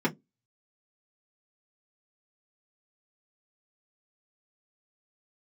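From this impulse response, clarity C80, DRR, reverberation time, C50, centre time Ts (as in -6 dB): 35.0 dB, -4.5 dB, 0.15 s, 22.5 dB, 14 ms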